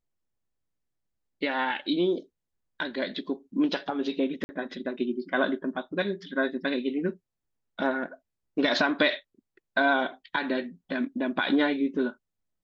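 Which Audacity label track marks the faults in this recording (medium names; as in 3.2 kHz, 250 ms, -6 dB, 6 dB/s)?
4.440000	4.490000	dropout 50 ms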